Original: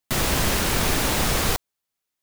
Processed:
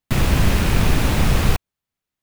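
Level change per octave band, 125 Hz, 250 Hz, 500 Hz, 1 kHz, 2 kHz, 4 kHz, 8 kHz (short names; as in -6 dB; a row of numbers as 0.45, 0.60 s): +9.5, +5.5, +1.0, 0.0, +0.5, -2.5, -5.5 dB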